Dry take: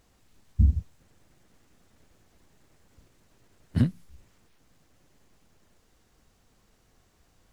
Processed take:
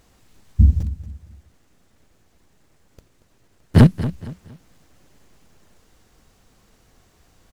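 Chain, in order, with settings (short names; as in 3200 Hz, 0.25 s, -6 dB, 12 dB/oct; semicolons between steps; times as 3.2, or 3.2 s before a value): 0.8–3.87 sample leveller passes 3; on a send: feedback echo 0.232 s, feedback 33%, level -14 dB; on the sum: gain +7.5 dB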